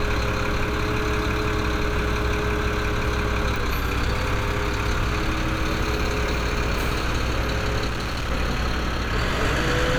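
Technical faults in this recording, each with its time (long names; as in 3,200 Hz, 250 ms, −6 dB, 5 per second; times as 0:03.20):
mains buzz 60 Hz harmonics 39 −28 dBFS
0:03.56: click
0:07.87–0:08.30: clipping −23 dBFS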